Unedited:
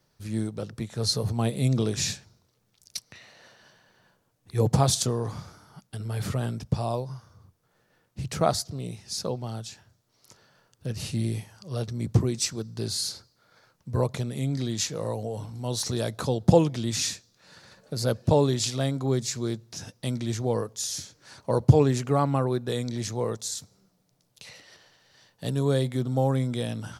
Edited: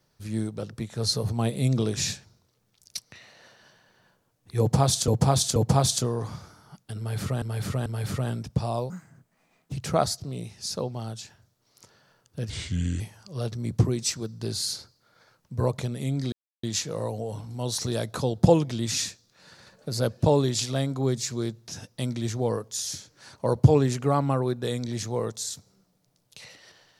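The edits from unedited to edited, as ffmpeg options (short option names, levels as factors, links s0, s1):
-filter_complex "[0:a]asplit=10[s0][s1][s2][s3][s4][s5][s6][s7][s8][s9];[s0]atrim=end=5.082[s10];[s1]atrim=start=4.598:end=5.082[s11];[s2]atrim=start=4.598:end=6.462[s12];[s3]atrim=start=6.018:end=6.462[s13];[s4]atrim=start=6.018:end=7.064[s14];[s5]atrim=start=7.06:end=8.2,asetpts=PTS-STARTPTS,asetrate=60858,aresample=44100,atrim=end_sample=36430,asetpts=PTS-STARTPTS[s15];[s6]atrim=start=8.196:end=10.974[s16];[s7]atrim=start=10.97:end=11.36,asetpts=PTS-STARTPTS,asetrate=33957,aresample=44100,atrim=end_sample=22336,asetpts=PTS-STARTPTS[s17];[s8]atrim=start=11.356:end=14.68,asetpts=PTS-STARTPTS,afade=t=out:st=3.32:d=0.004:c=hsin,apad=pad_dur=0.31[s18];[s9]atrim=start=14.68,asetpts=PTS-STARTPTS,afade=t=in:d=0.004:c=hsin[s19];[s10][s11]acrossfade=d=0.004:c1=hsin:c2=hsin[s20];[s20][s12]acrossfade=d=0.004:c1=hsin:c2=hsin[s21];[s21][s13]acrossfade=d=0.004:c1=hsin:c2=hsin[s22];[s22][s14]acrossfade=d=0.004:c1=hsin:c2=hsin[s23];[s23][s15]acrossfade=d=0.004:c1=hsin:c2=hsin[s24];[s24][s16]acrossfade=d=0.004:c1=hsin:c2=hsin[s25];[s25][s17]acrossfade=d=0.004:c1=hsin:c2=hsin[s26];[s18][s19]concat=n=2:v=0:a=1[s27];[s26][s27]acrossfade=d=0.004:c1=hsin:c2=hsin"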